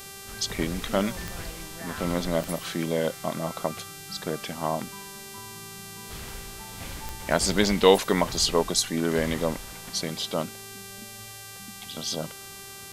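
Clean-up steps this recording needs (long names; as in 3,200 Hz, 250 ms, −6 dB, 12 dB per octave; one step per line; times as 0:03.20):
click removal
hum removal 392.8 Hz, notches 35
downward expander −34 dBFS, range −21 dB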